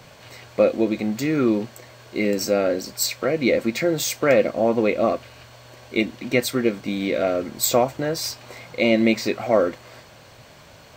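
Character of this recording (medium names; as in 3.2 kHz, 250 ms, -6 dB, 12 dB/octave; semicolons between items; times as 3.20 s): noise floor -47 dBFS; spectral tilt -4.0 dB/octave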